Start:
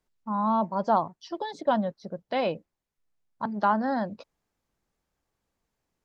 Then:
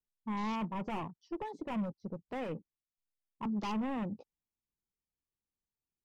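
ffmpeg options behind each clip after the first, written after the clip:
-af "volume=30dB,asoftclip=hard,volume=-30dB,afwtdn=0.00501,equalizer=f=630:t=o:w=0.67:g=-11,equalizer=f=1.6k:t=o:w=0.67:g=-11,equalizer=f=4k:t=o:w=0.67:g=-5"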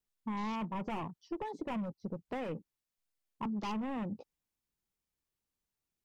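-af "acompressor=threshold=-39dB:ratio=4,volume=4dB"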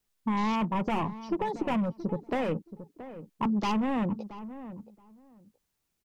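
-filter_complex "[0:a]asplit=2[a][b];[b]adelay=675,lowpass=f=1.2k:p=1,volume=-13dB,asplit=2[c][d];[d]adelay=675,lowpass=f=1.2k:p=1,volume=0.18[e];[a][c][e]amix=inputs=3:normalize=0,volume=9dB"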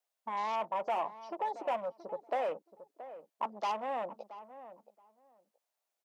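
-af "highpass=f=640:t=q:w=3.8,volume=-7.5dB"

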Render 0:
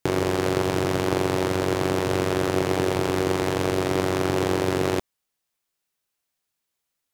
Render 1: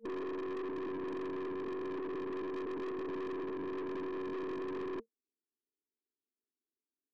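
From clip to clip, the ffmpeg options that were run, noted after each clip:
-af "afftfilt=real='re*between(b*sr/4096,220,460)':imag='im*between(b*sr/4096,220,460)':win_size=4096:overlap=0.75,aeval=exprs='(tanh(63.1*val(0)+0.25)-tanh(0.25))/63.1':c=same,volume=-1.5dB"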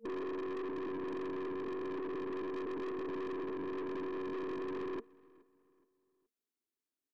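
-filter_complex "[0:a]asplit=2[a][b];[b]adelay=422,lowpass=f=2.7k:p=1,volume=-23dB,asplit=2[c][d];[d]adelay=422,lowpass=f=2.7k:p=1,volume=0.39,asplit=2[e][f];[f]adelay=422,lowpass=f=2.7k:p=1,volume=0.39[g];[a][c][e][g]amix=inputs=4:normalize=0"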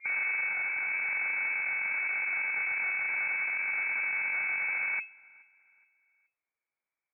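-filter_complex "[0:a]asplit=2[a][b];[b]acrusher=bits=5:mix=0:aa=0.000001,volume=-11.5dB[c];[a][c]amix=inputs=2:normalize=0,lowpass=f=2.2k:t=q:w=0.5098,lowpass=f=2.2k:t=q:w=0.6013,lowpass=f=2.2k:t=q:w=0.9,lowpass=f=2.2k:t=q:w=2.563,afreqshift=-2600,volume=6dB"

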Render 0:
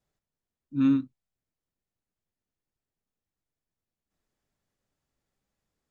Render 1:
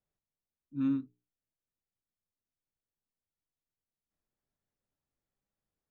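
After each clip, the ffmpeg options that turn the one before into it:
-af "highshelf=f=2.2k:g=-7,bandreject=f=60:t=h:w=6,bandreject=f=120:t=h:w=6,bandreject=f=180:t=h:w=6,bandreject=f=240:t=h:w=6,bandreject=f=300:t=h:w=6,bandreject=f=360:t=h:w=6,bandreject=f=420:t=h:w=6,volume=-7.5dB"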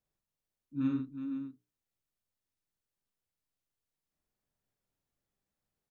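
-af "aecho=1:1:46|368|504:0.668|0.316|0.282"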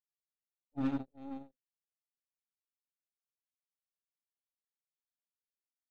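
-filter_complex "[0:a]aeval=exprs='0.0841*(cos(1*acos(clip(val(0)/0.0841,-1,1)))-cos(1*PI/2))+0.00944*(cos(4*acos(clip(val(0)/0.0841,-1,1)))-cos(4*PI/2))+0.0119*(cos(7*acos(clip(val(0)/0.0841,-1,1)))-cos(7*PI/2))':c=same,asplit=2[a][b];[b]volume=35.5dB,asoftclip=hard,volume=-35.5dB,volume=-3dB[c];[a][c]amix=inputs=2:normalize=0,volume=-4.5dB"

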